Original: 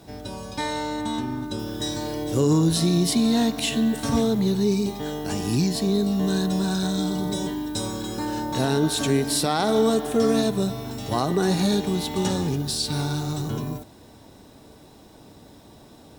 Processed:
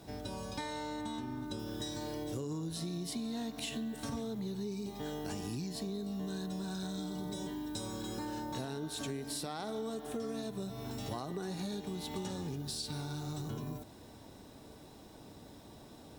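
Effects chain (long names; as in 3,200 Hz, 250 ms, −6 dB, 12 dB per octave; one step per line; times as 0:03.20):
downward compressor, threshold −32 dBFS, peak gain reduction 15 dB
level −5 dB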